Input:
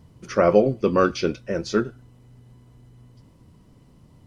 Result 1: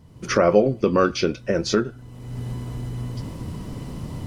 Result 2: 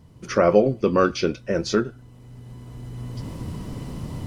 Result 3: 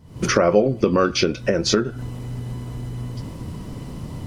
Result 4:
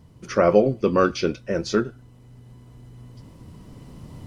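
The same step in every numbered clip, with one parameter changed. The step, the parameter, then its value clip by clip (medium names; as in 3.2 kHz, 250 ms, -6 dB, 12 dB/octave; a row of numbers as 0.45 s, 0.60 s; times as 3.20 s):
recorder AGC, rising by: 32 dB/s, 13 dB/s, 88 dB/s, 5 dB/s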